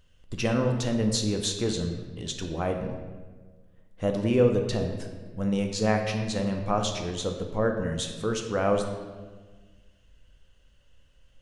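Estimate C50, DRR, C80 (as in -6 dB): 6.0 dB, 3.0 dB, 7.5 dB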